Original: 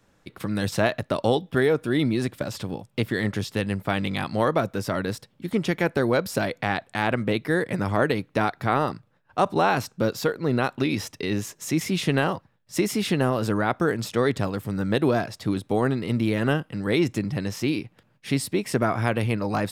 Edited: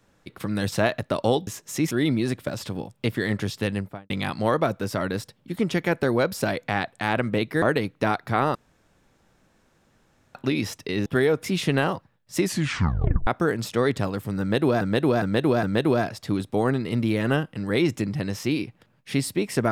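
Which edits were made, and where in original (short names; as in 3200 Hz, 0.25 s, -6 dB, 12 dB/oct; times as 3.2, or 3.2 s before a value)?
1.47–1.85 swap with 11.4–11.84
3.64–4.04 studio fade out
7.56–7.96 cut
8.89–10.69 room tone
12.8 tape stop 0.87 s
14.8–15.21 loop, 4 plays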